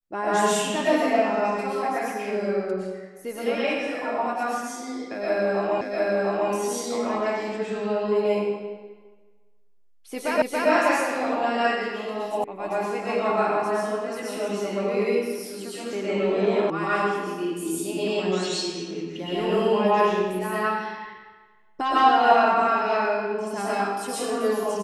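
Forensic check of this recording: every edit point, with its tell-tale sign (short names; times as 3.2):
5.81 repeat of the last 0.7 s
10.42 repeat of the last 0.28 s
12.44 sound cut off
16.7 sound cut off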